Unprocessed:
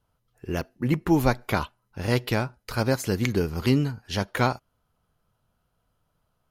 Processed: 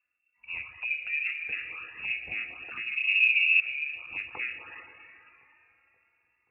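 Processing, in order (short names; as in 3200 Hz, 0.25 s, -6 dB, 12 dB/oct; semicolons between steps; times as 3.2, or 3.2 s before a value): compressor 2.5:1, threshold -26 dBFS, peak gain reduction 7.5 dB; FDN reverb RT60 3.3 s, high-frequency decay 0.9×, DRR 2.5 dB; envelope flanger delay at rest 4.2 ms, full sweep at -25 dBFS; 2.96–3.6 tilt -4 dB/oct; treble ducked by the level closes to 1200 Hz, closed at -22.5 dBFS; inverted band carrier 2700 Hz; HPF 60 Hz; on a send: dark delay 0.53 s, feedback 65%, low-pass 490 Hz, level -19.5 dB; on the sum: phaser 0.42 Hz, delay 1.6 ms, feedback 31%; gain -7 dB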